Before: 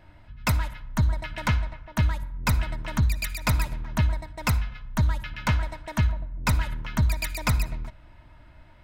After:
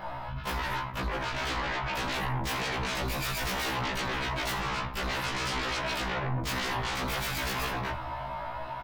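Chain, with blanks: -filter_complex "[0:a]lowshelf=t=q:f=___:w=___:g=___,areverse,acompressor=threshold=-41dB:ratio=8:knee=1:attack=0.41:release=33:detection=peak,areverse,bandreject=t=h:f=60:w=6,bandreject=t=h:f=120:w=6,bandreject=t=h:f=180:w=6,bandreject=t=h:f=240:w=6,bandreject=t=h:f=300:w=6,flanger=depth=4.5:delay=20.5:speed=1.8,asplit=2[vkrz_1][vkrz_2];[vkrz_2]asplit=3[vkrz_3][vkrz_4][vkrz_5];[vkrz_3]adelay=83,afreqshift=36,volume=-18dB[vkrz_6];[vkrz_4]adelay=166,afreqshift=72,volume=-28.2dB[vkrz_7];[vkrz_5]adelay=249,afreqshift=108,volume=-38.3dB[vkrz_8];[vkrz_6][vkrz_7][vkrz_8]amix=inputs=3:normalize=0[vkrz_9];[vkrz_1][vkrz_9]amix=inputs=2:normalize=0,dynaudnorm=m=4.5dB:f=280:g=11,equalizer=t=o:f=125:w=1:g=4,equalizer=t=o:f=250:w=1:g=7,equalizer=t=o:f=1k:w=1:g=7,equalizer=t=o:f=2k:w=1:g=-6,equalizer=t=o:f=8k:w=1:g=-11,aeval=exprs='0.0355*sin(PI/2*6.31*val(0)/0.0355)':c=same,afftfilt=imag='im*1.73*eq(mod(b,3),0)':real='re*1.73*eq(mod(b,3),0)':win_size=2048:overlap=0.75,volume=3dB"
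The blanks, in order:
450, 1.5, -11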